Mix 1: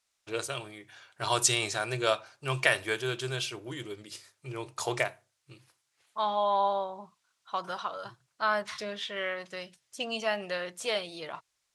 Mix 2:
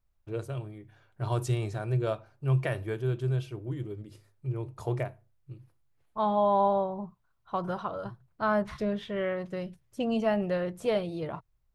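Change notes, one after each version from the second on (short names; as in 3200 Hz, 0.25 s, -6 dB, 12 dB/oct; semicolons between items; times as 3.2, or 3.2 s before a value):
first voice -7.5 dB; master: remove weighting filter ITU-R 468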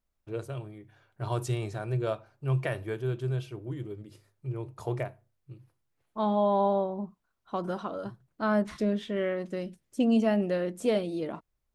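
second voice: add graphic EQ 125/250/1000/8000 Hz -11/+11/-4/+7 dB; master: add low shelf 72 Hz -9 dB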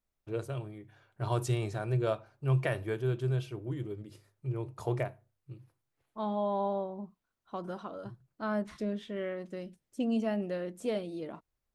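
second voice -6.5 dB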